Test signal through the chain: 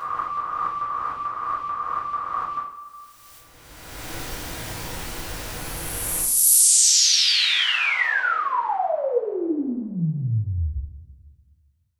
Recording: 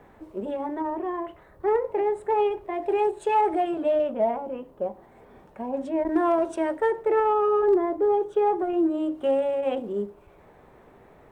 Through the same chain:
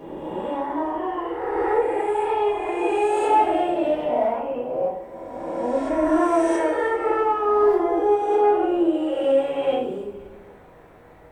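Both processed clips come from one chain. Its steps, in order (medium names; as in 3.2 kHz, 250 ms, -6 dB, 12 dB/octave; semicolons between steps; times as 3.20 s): reverse spectral sustain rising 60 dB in 1.93 s; two-slope reverb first 0.46 s, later 2 s, from -18 dB, DRR -8.5 dB; trim -7.5 dB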